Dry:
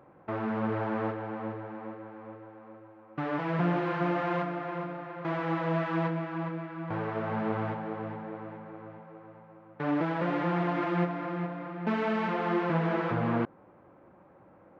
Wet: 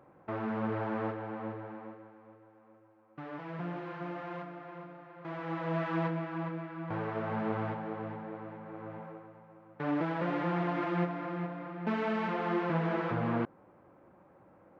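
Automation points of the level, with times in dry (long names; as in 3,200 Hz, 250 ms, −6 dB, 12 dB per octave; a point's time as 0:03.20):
0:01.71 −3 dB
0:02.22 −11 dB
0:05.11 −11 dB
0:05.86 −2.5 dB
0:08.56 −2.5 dB
0:09.05 +4.5 dB
0:09.30 −3 dB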